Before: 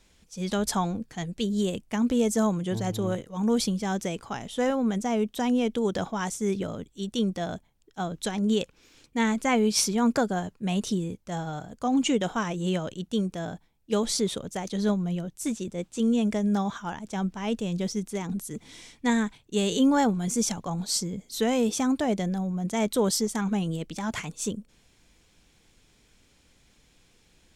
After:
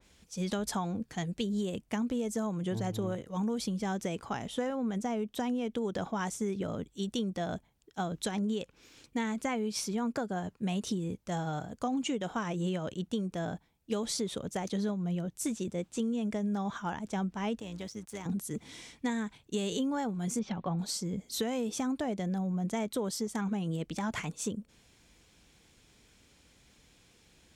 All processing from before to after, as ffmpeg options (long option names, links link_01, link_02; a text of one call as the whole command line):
ffmpeg -i in.wav -filter_complex "[0:a]asettb=1/sr,asplit=3[link_01][link_02][link_03];[link_01]atrim=end=17.584[link_04];[link_02]atrim=start=17.58:end=18.26,asetpts=PTS-STARTPTS,afade=type=in:duration=0.004:curve=qsin,afade=type=out:start_time=0.676:duration=0.004:curve=qsin,aeval=exprs='sgn(val(0))*max(abs(val(0))-0.00178,0)':channel_layout=same,acrossover=split=120|690[link_05][link_06][link_07];[link_05]acompressor=threshold=-55dB:ratio=4[link_08];[link_06]acompressor=threshold=-40dB:ratio=4[link_09];[link_07]acompressor=threshold=-41dB:ratio=4[link_10];[link_08][link_09][link_10]amix=inputs=3:normalize=0,tremolo=f=110:d=0.519[link_11];[link_03]atrim=start=18.256[link_12];[link_04][link_11]acrossfade=duration=0.004:curve1=hsin:curve2=qsin[link_13];[link_13][link_12]acrossfade=duration=0.004:curve1=qsin:curve2=hsin,asettb=1/sr,asplit=3[link_14][link_15][link_16];[link_14]atrim=end=20.394[link_17];[link_15]atrim=start=20.39:end=20.79,asetpts=PTS-STARTPTS,afade=type=in:duration=0.004:curve=qsin,afade=type=out:start_time=0.396:duration=0.004:curve=qsin,lowpass=frequency=3700:width=0.5412,lowpass=frequency=3700:width=1.3066,aecho=1:1:5.4:0.33,atrim=end_sample=17640[link_18];[link_16]atrim=start=20.786[link_19];[link_17][link_18]acrossfade=duration=0.004:curve1=hsin:curve2=qsin[link_20];[link_20][link_19]acrossfade=duration=0.004:curve1=qsin:curve2=hsin,highpass=40,acompressor=threshold=-29dB:ratio=10,adynamicequalizer=threshold=0.00224:dfrequency=2800:dqfactor=0.7:tfrequency=2800:tqfactor=0.7:attack=5:release=100:ratio=0.375:range=2:mode=cutabove:tftype=highshelf" out.wav